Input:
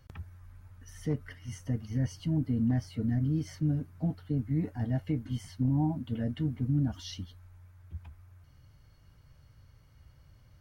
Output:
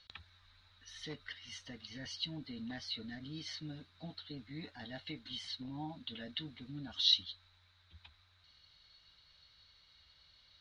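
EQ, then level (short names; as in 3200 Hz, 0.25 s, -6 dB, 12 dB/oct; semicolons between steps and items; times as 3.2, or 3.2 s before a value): synth low-pass 3900 Hz, resonance Q 13; tilt shelf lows -9.5 dB, about 770 Hz; bell 120 Hz -14 dB 0.29 oct; -7.5 dB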